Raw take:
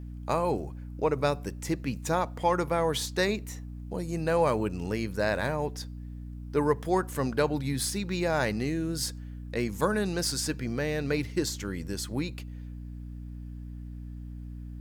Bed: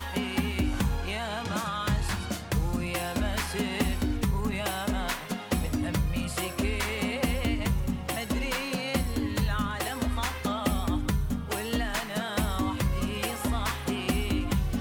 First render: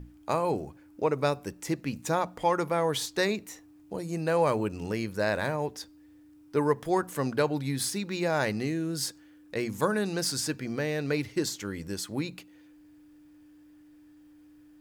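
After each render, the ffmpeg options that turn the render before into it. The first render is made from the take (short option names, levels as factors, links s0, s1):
-af "bandreject=f=60:t=h:w=6,bandreject=f=120:t=h:w=6,bandreject=f=180:t=h:w=6,bandreject=f=240:t=h:w=6"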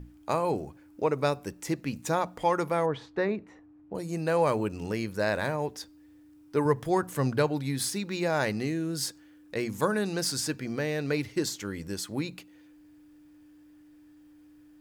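-filter_complex "[0:a]asplit=3[s0][s1][s2];[s0]afade=t=out:st=2.85:d=0.02[s3];[s1]lowpass=1600,afade=t=in:st=2.85:d=0.02,afade=t=out:st=3.94:d=0.02[s4];[s2]afade=t=in:st=3.94:d=0.02[s5];[s3][s4][s5]amix=inputs=3:normalize=0,asettb=1/sr,asplit=3[s6][s7][s8];[s6]atrim=end=6.654[s9];[s7]atrim=start=6.65:end=7.47,asetpts=PTS-STARTPTS,afade=t=in:d=0.004:c=qsin,afade=t=out:st=0.816:d=0.004:c=qsin,equalizer=f=110:w=1.5:g=8.5[s10];[s8]atrim=start=7.466[s11];[s9][s10]acrossfade=d=0.004:c1=hsin:c2=qsin[s12];[s12][s11]acrossfade=d=0.004:c1=qsin:c2=hsin"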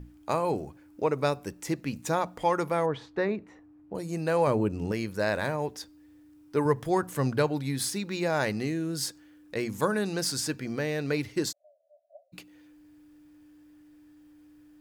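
-filter_complex "[0:a]asettb=1/sr,asplit=3[s0][s1][s2];[s0]atrim=end=4.474[s3];[s1]atrim=start=4.47:end=4.92,asetpts=PTS-STARTPTS,afade=t=in:d=0.004:c=qsin,afade=t=out:st=0.446:d=0.004:c=qsin,tiltshelf=f=740:g=5[s4];[s2]atrim=start=4.916[s5];[s3][s4]acrossfade=d=0.004:c1=hsin:c2=qsin[s6];[s6][s5]acrossfade=d=0.004:c1=qsin:c2=hsin,asplit=3[s7][s8][s9];[s7]afade=t=out:st=11.51:d=0.02[s10];[s8]asuperpass=centerf=640:order=12:qfactor=4.1,afade=t=in:st=11.51:d=0.02,afade=t=out:st=12.32:d=0.02[s11];[s9]afade=t=in:st=12.32:d=0.02[s12];[s10][s11][s12]amix=inputs=3:normalize=0"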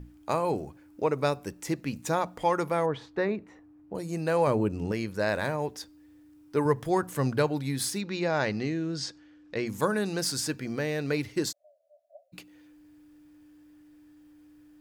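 -filter_complex "[0:a]asettb=1/sr,asplit=3[s0][s1][s2];[s0]atrim=end=4.814[s3];[s1]atrim=start=4.81:end=5.29,asetpts=PTS-STARTPTS,afade=t=in:d=0.004:c=qsin,afade=t=out:st=0.476:d=0.004:c=qsin,highshelf=f=9700:g=-5.5[s4];[s2]atrim=start=5.286[s5];[s3][s4]acrossfade=d=0.004:c1=hsin:c2=qsin[s6];[s6][s5]acrossfade=d=0.004:c1=qsin:c2=hsin,asettb=1/sr,asplit=3[s7][s8][s9];[s7]atrim=end=8.014[s10];[s8]atrim=start=8.01:end=9.67,asetpts=PTS-STARTPTS,afade=t=in:d=0.004:c=qsin,afade=t=out:st=1.656:d=0.004:c=qsin,lowpass=f=6100:w=0.5412,lowpass=f=6100:w=1.3066[s11];[s9]atrim=start=9.666[s12];[s10][s11]acrossfade=d=0.004:c1=hsin:c2=qsin[s13];[s13][s12]acrossfade=d=0.004:c1=qsin:c2=hsin"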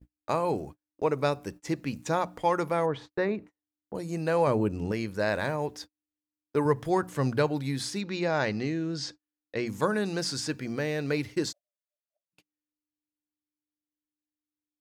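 -filter_complex "[0:a]acrossover=split=7600[s0][s1];[s1]acompressor=threshold=0.002:ratio=4:attack=1:release=60[s2];[s0][s2]amix=inputs=2:normalize=0,agate=range=0.00891:threshold=0.00794:ratio=16:detection=peak"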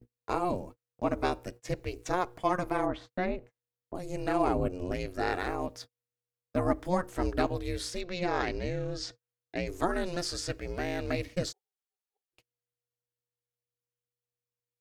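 -af "aeval=exprs='val(0)*sin(2*PI*180*n/s)':c=same"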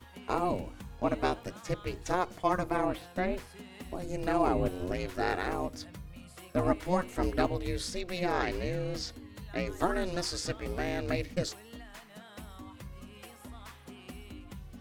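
-filter_complex "[1:a]volume=0.119[s0];[0:a][s0]amix=inputs=2:normalize=0"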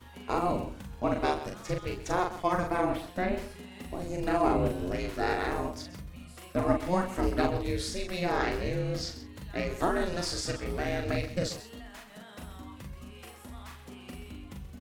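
-filter_complex "[0:a]asplit=2[s0][s1];[s1]adelay=41,volume=0.631[s2];[s0][s2]amix=inputs=2:normalize=0,aecho=1:1:130:0.211"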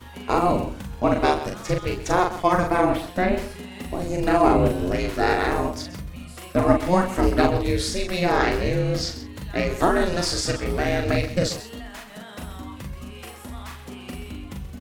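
-af "volume=2.66"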